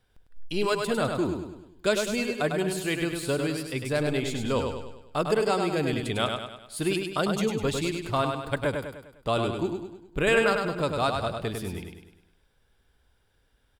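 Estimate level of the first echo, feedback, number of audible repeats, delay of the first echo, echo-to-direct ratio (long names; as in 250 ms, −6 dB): −5.0 dB, 48%, 5, 101 ms, −4.0 dB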